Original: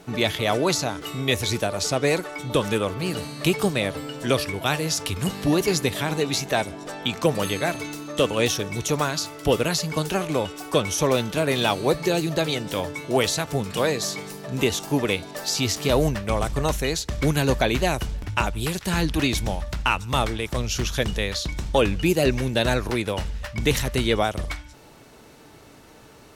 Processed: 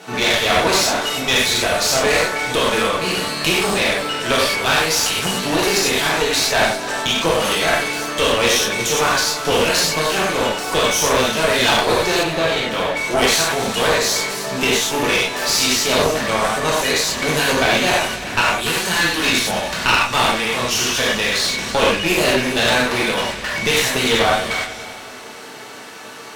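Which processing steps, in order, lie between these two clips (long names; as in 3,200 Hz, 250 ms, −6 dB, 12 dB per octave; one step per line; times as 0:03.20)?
meter weighting curve A
reverb whose tail is shaped and stops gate 140 ms flat, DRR −6.5 dB
in parallel at −1 dB: downward compressor, threshold −30 dBFS, peak gain reduction 17.5 dB
on the sum: asymmetric clip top −24.5 dBFS
0:12.23–0:12.97: bass and treble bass 0 dB, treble −11 dB
on a send: echo machine with several playback heads 96 ms, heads first and third, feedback 57%, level −16 dB
on the sum: level +3 dB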